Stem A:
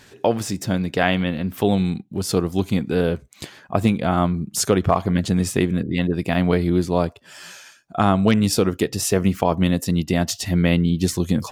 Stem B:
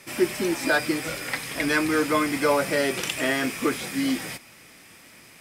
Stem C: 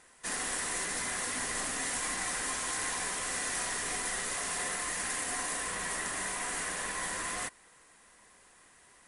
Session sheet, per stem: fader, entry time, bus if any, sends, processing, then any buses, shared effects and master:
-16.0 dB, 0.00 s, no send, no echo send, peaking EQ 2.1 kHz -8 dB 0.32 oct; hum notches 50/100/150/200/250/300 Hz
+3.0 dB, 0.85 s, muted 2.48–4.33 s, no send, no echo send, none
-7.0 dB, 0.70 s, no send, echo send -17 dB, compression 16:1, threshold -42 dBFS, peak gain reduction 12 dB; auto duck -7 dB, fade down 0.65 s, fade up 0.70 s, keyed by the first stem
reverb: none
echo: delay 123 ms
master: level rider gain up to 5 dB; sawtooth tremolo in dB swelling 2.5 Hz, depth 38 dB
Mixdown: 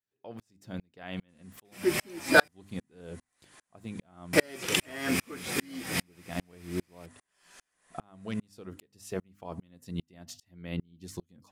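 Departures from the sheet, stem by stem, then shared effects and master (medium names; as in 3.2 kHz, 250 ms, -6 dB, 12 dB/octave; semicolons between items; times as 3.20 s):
stem A: missing peaking EQ 2.1 kHz -8 dB 0.32 oct; stem B: entry 0.85 s -> 1.65 s; stem C: entry 0.70 s -> 1.05 s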